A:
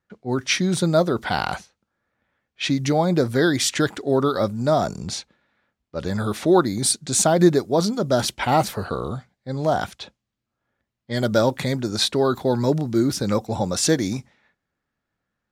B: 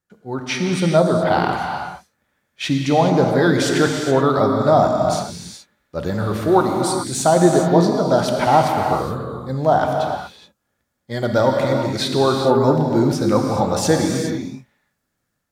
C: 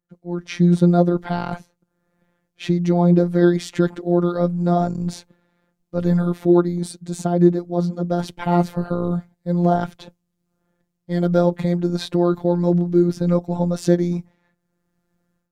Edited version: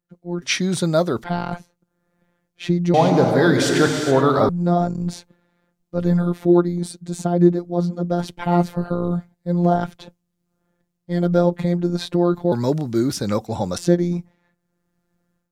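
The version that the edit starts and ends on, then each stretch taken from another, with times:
C
0.42–1.24 from A
2.94–4.49 from B
12.52–13.78 from A

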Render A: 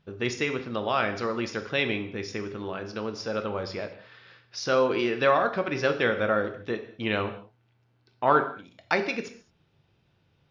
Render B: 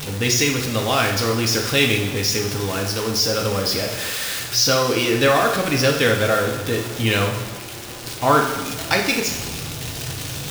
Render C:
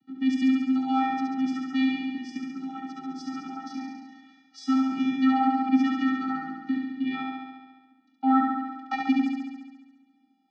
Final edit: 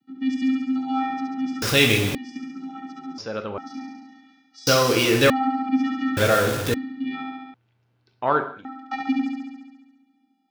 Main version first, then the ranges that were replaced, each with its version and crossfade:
C
1.62–2.15 from B
3.18–3.58 from A
4.67–5.3 from B
6.17–6.74 from B
7.54–8.65 from A

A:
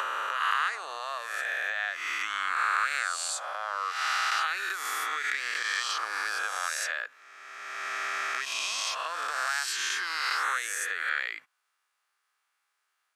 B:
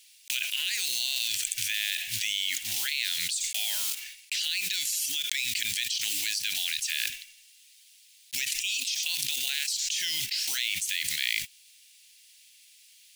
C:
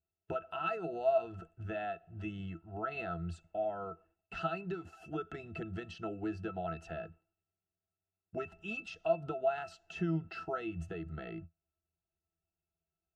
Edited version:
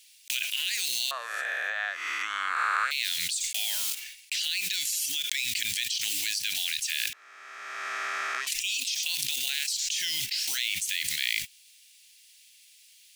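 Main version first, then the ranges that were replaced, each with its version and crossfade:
B
1.11–2.91 from A
7.13–8.47 from A
not used: C

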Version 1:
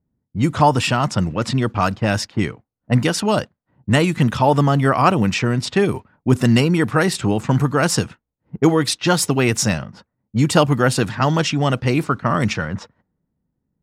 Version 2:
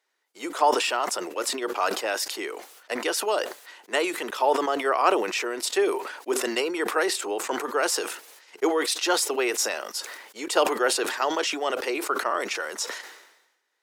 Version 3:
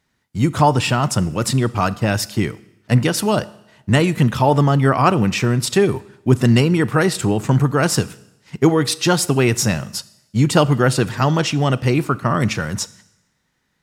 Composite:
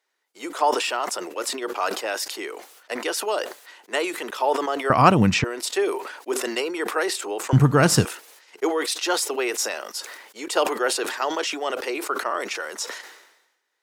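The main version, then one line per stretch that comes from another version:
2
4.9–5.44 from 1
7.53–8.05 from 3

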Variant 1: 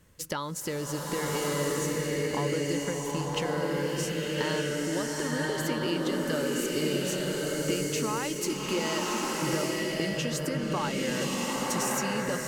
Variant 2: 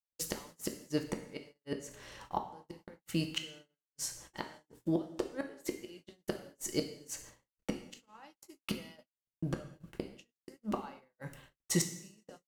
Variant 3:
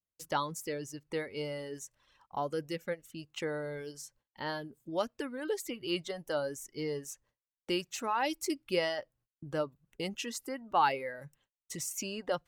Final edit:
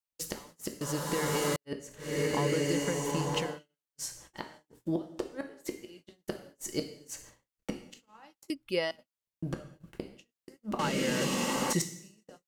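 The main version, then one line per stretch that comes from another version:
2
0.81–1.56 from 1
2.09–3.48 from 1, crossfade 0.24 s
8.5–8.91 from 3
10.79–11.73 from 1

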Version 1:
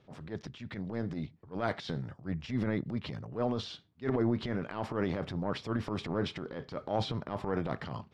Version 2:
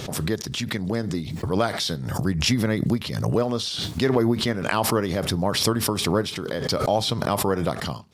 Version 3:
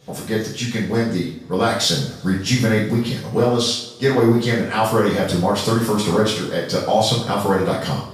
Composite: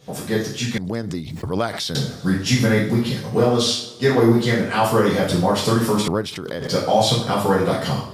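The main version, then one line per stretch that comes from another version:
3
0.78–1.95 from 2
6.08–6.68 from 2
not used: 1

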